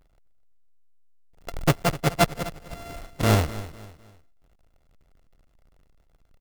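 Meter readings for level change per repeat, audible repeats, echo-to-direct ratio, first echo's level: −9.0 dB, 3, −15.5 dB, −16.0 dB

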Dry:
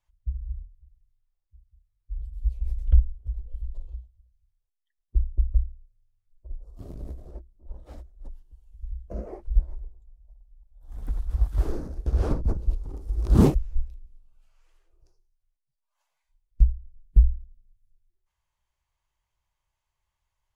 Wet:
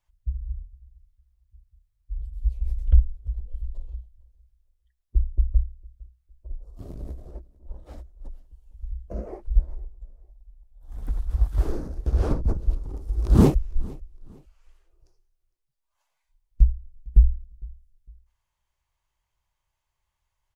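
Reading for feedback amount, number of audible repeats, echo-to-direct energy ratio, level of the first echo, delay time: 31%, 2, −23.0 dB, −23.5 dB, 456 ms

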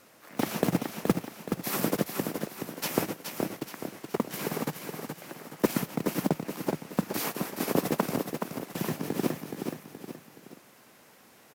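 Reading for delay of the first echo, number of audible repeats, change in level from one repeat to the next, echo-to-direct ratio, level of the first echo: 423 ms, 3, −7.5 dB, −5.0 dB, −6.0 dB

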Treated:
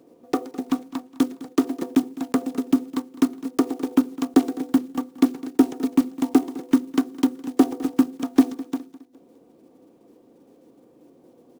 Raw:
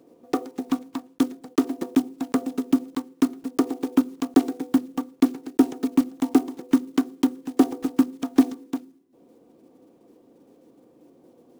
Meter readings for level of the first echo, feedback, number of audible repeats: −19.0 dB, 43%, 3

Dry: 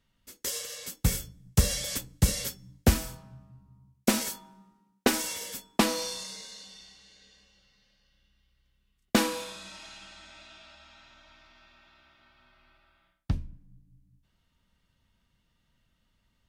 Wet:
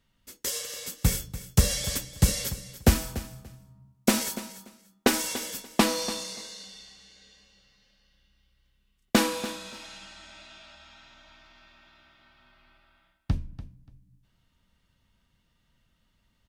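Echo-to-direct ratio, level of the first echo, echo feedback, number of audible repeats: −14.5 dB, −14.5 dB, 18%, 2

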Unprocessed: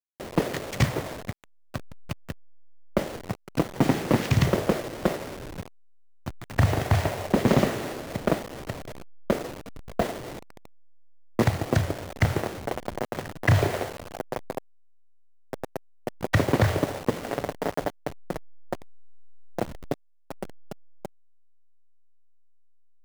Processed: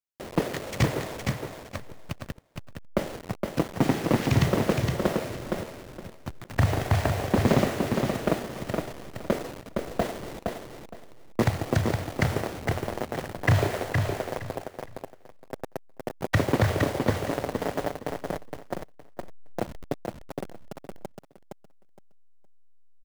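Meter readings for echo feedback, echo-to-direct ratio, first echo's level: 21%, −4.5 dB, −4.5 dB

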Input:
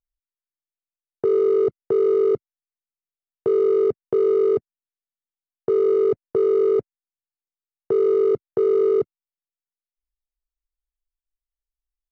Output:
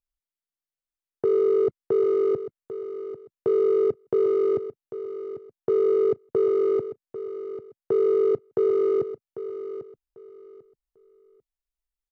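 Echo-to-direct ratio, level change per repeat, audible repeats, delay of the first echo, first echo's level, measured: −12.0 dB, −13.0 dB, 2, 795 ms, −12.0 dB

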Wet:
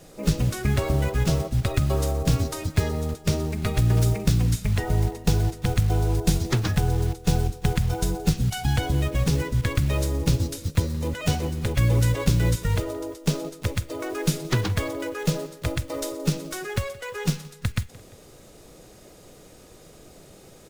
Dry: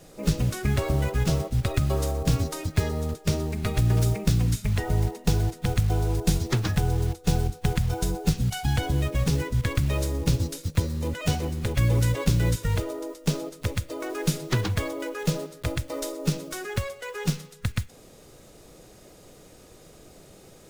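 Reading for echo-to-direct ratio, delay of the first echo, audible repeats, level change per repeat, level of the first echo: −21.0 dB, 173 ms, 2, −5.5 dB, −22.0 dB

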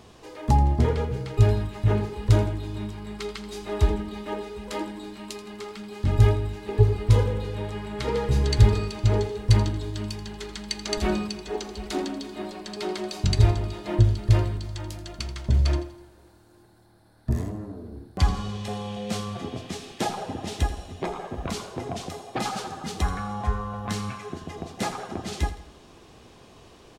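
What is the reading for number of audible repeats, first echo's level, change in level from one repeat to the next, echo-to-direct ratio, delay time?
3, −13.5 dB, −7.5 dB, −12.5 dB, 83 ms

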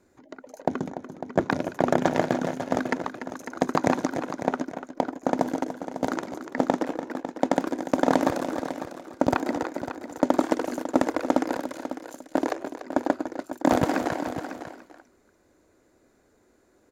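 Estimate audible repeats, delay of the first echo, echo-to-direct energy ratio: 3, 291 ms, −8.0 dB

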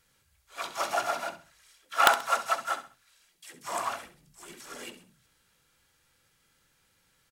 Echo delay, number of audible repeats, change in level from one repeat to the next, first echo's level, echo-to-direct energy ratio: 66 ms, 3, −10.0 dB, −12.5 dB, −12.0 dB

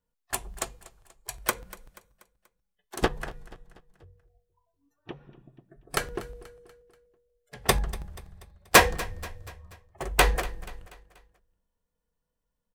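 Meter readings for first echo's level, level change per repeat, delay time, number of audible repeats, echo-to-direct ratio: −19.0 dB, −6.5 dB, 241 ms, 3, −18.0 dB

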